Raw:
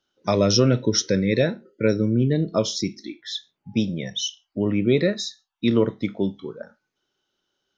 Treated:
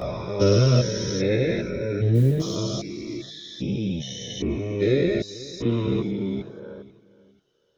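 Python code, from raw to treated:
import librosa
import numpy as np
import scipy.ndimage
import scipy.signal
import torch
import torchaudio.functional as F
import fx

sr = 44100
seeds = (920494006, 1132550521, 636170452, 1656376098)

p1 = fx.spec_steps(x, sr, hold_ms=400)
p2 = fx.chorus_voices(p1, sr, voices=4, hz=0.28, base_ms=16, depth_ms=1.6, mix_pct=65)
p3 = p2 + fx.echo_feedback(p2, sr, ms=488, feedback_pct=26, wet_db=-19.0, dry=0)
p4 = fx.mod_noise(p3, sr, seeds[0], snr_db=33, at=(2.14, 2.55), fade=0.02)
y = p4 * librosa.db_to_amplitude(5.0)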